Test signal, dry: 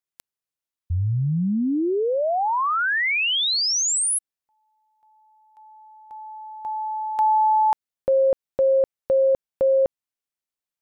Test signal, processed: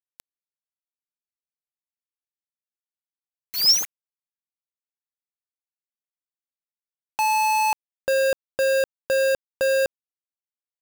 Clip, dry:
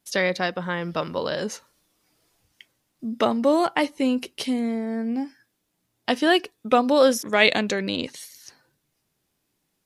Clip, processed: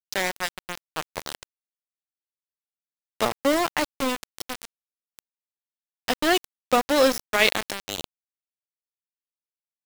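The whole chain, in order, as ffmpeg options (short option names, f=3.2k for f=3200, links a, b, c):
-af "equalizer=f=5.3k:w=6.9:g=10.5,aeval=exprs='val(0)*gte(abs(val(0)),0.126)':c=same,volume=-1.5dB"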